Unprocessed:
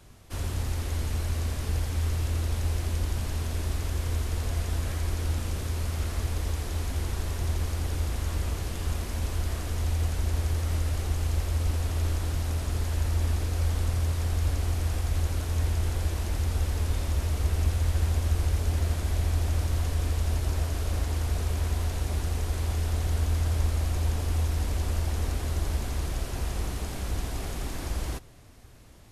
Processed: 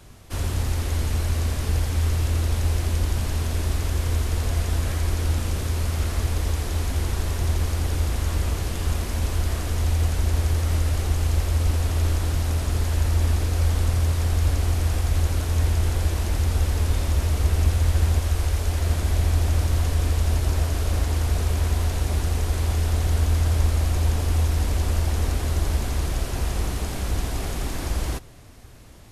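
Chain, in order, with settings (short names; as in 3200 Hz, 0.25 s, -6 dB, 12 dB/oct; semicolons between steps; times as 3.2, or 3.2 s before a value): 18.19–18.86 bell 160 Hz -6.5 dB 2 oct; gain +5.5 dB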